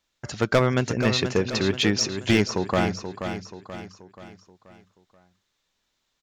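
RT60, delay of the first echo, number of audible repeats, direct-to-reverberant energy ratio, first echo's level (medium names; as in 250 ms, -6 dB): no reverb, 481 ms, 4, no reverb, -8.5 dB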